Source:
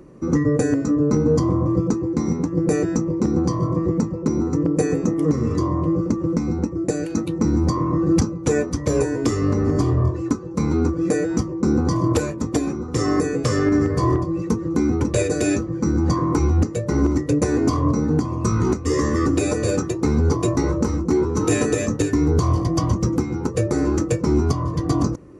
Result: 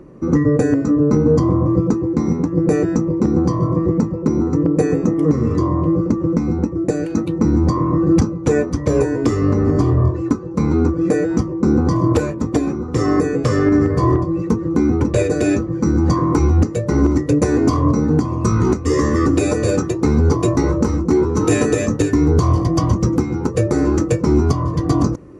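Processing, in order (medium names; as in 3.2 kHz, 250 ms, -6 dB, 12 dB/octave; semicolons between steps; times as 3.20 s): treble shelf 3.7 kHz -9.5 dB, from 15.71 s -4 dB; trim +4 dB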